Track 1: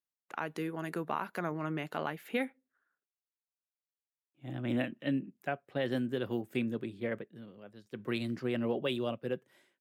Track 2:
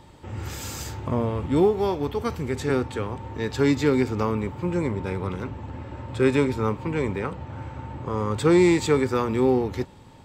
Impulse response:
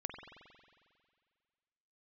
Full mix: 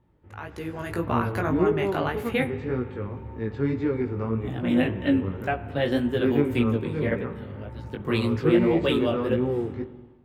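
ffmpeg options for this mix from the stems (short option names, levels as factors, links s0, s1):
-filter_complex "[0:a]volume=0.75,asplit=2[s0][s1];[s1]volume=0.422[s2];[1:a]lowpass=1500,equalizer=f=860:w=1:g=-7.5,volume=0.2,asplit=2[s3][s4];[s4]volume=0.668[s5];[2:a]atrim=start_sample=2205[s6];[s2][s5]amix=inputs=2:normalize=0[s7];[s7][s6]afir=irnorm=-1:irlink=0[s8];[s0][s3][s8]amix=inputs=3:normalize=0,dynaudnorm=f=490:g=3:m=3.76,flanger=delay=16.5:depth=4.3:speed=1.8"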